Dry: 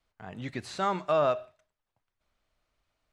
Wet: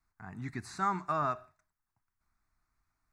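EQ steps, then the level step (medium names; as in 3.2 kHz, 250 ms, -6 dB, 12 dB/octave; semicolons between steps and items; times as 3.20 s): static phaser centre 1.3 kHz, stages 4; 0.0 dB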